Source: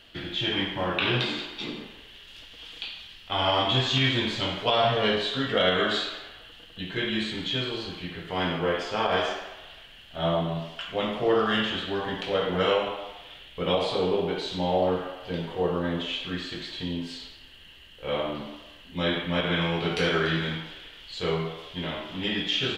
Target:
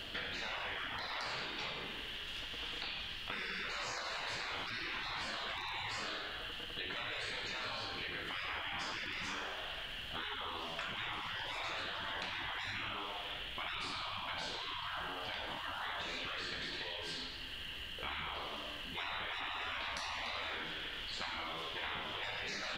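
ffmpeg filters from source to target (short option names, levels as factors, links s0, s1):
-filter_complex "[0:a]afftfilt=real='re*lt(hypot(re,im),0.0501)':imag='im*lt(hypot(re,im),0.0501)':win_size=1024:overlap=0.75,acrossover=split=960|2000[s0][s1][s2];[s0]acompressor=threshold=0.00126:ratio=4[s3];[s1]acompressor=threshold=0.002:ratio=4[s4];[s2]acompressor=threshold=0.00178:ratio=4[s5];[s3][s4][s5]amix=inputs=3:normalize=0,aeval=exprs='val(0)+0.000178*(sin(2*PI*50*n/s)+sin(2*PI*2*50*n/s)/2+sin(2*PI*3*50*n/s)/3+sin(2*PI*4*50*n/s)/4+sin(2*PI*5*50*n/s)/5)':c=same,volume=2.66"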